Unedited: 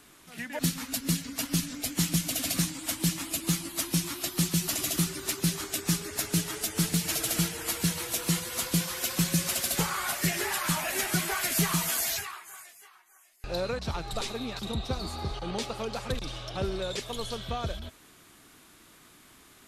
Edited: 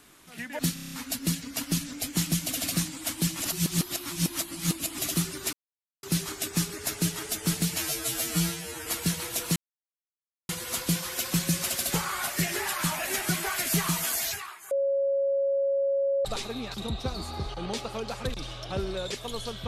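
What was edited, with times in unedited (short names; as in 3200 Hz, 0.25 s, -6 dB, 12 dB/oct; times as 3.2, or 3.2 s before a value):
0.74 stutter 0.03 s, 7 plays
3.22–4.8 reverse
5.35 insert silence 0.50 s
7.1–7.64 stretch 2×
8.34 insert silence 0.93 s
12.56–14.1 bleep 552 Hz -22.5 dBFS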